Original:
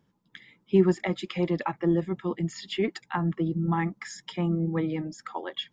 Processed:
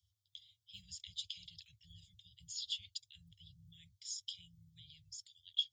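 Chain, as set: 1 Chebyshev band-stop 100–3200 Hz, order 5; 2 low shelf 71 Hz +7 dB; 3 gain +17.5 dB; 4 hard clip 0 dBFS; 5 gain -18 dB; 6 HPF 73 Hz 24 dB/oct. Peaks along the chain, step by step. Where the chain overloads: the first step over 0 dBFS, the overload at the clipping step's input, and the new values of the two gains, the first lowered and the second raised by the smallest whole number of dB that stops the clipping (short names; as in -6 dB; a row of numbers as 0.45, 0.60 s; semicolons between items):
-21.5, -21.5, -4.0, -4.0, -22.0, -22.0 dBFS; no overload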